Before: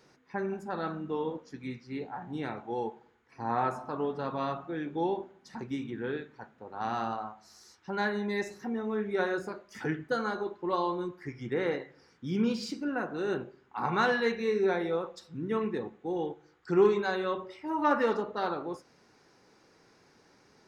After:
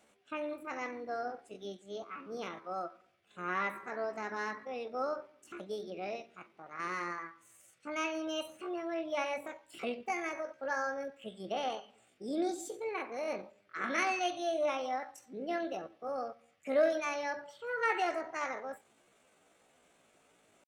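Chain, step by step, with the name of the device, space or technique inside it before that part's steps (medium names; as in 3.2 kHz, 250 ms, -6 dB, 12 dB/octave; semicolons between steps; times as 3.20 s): chipmunk voice (pitch shift +7.5 st); trim -5 dB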